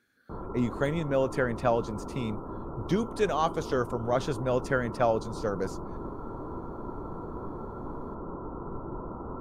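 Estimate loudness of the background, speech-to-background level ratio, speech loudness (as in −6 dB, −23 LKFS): −39.5 LKFS, 10.0 dB, −29.5 LKFS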